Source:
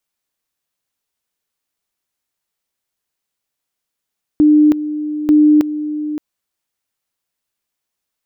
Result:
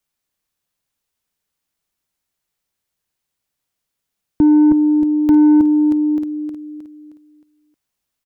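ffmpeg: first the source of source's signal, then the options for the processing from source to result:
-f lavfi -i "aevalsrc='pow(10,(-6-12.5*gte(mod(t,0.89),0.32))/20)*sin(2*PI*301*t)':d=1.78:s=44100"
-filter_complex "[0:a]aecho=1:1:312|624|936|1248|1560:0.355|0.145|0.0596|0.0245|0.01,acrossover=split=210[a][b];[a]acontrast=38[c];[b]asoftclip=type=tanh:threshold=-11.5dB[d];[c][d]amix=inputs=2:normalize=0"

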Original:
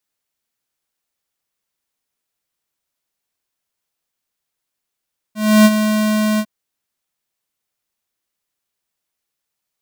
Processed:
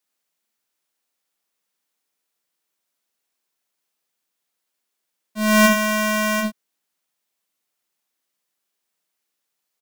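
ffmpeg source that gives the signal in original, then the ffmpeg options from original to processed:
-f lavfi -i "aevalsrc='0.447*(2*lt(mod(214*t,1),0.5)-1)':d=1.101:s=44100,afade=t=in:d=0.302,afade=t=out:st=0.302:d=0.043:silence=0.355,afade=t=out:st=1.04:d=0.061"
-filter_complex "[0:a]aecho=1:1:40|68:0.237|0.501,acrossover=split=140|1400[a][b][c];[a]acrusher=bits=5:dc=4:mix=0:aa=0.000001[d];[d][b][c]amix=inputs=3:normalize=0"

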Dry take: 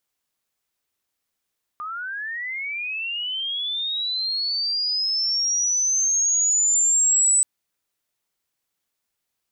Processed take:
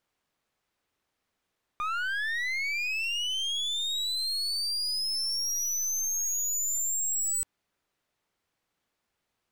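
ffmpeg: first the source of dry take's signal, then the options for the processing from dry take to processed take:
-f lavfi -i "aevalsrc='pow(10,(-28.5+14*t/5.63)/20)*sin(2*PI*(1200*t+6800*t*t/(2*5.63)))':d=5.63:s=44100"
-filter_complex "[0:a]lowpass=f=1.9k:p=1,asplit=2[a][b];[b]alimiter=level_in=10dB:limit=-24dB:level=0:latency=1,volume=-10dB,volume=1dB[c];[a][c]amix=inputs=2:normalize=0,aeval=exprs='clip(val(0),-1,0.02)':c=same"

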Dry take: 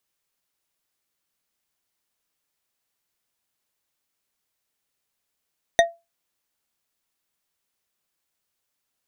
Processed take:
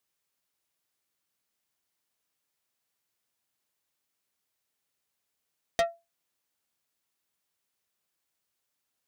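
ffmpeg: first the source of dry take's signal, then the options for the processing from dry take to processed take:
-f lavfi -i "aevalsrc='0.355*pow(10,-3*t/0.23)*sin(2*PI*677*t)+0.224*pow(10,-3*t/0.113)*sin(2*PI*1866.5*t)+0.141*pow(10,-3*t/0.071)*sin(2*PI*3658.5*t)+0.0891*pow(10,-3*t/0.05)*sin(2*PI*6047.6*t)+0.0562*pow(10,-3*t/0.038)*sin(2*PI*9031.2*t)':d=0.89:s=44100"
-af "aeval=exprs='(tanh(11.2*val(0)+0.55)-tanh(0.55))/11.2':c=same,highpass=53"

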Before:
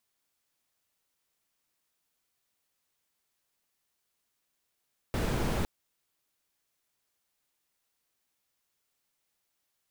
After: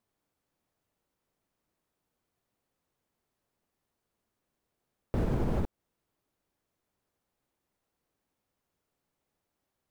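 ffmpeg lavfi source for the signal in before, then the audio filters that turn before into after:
-f lavfi -i "anoisesrc=c=brown:a=0.157:d=0.51:r=44100:seed=1"
-af "tiltshelf=f=1.3k:g=9,alimiter=limit=-21dB:level=0:latency=1:release=178"

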